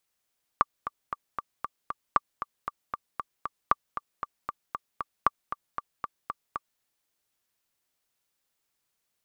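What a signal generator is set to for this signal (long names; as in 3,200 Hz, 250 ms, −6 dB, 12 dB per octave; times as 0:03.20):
click track 232 BPM, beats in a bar 6, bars 4, 1,170 Hz, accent 11.5 dB −6.5 dBFS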